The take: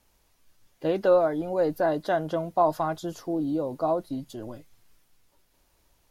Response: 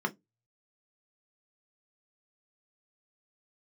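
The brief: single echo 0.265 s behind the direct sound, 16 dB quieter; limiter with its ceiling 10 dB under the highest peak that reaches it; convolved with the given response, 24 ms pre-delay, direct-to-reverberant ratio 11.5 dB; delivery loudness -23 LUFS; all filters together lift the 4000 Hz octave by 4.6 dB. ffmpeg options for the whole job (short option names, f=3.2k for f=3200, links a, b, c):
-filter_complex "[0:a]equalizer=f=4k:t=o:g=5.5,alimiter=limit=-20.5dB:level=0:latency=1,aecho=1:1:265:0.158,asplit=2[a][b];[1:a]atrim=start_sample=2205,adelay=24[c];[b][c]afir=irnorm=-1:irlink=0,volume=-18.5dB[d];[a][d]amix=inputs=2:normalize=0,volume=7dB"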